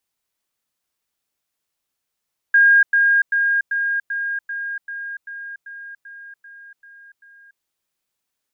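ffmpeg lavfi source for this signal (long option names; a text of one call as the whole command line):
ffmpeg -f lavfi -i "aevalsrc='pow(10,(-9-3*floor(t/0.39))/20)*sin(2*PI*1620*t)*clip(min(mod(t,0.39),0.29-mod(t,0.39))/0.005,0,1)':duration=5.07:sample_rate=44100" out.wav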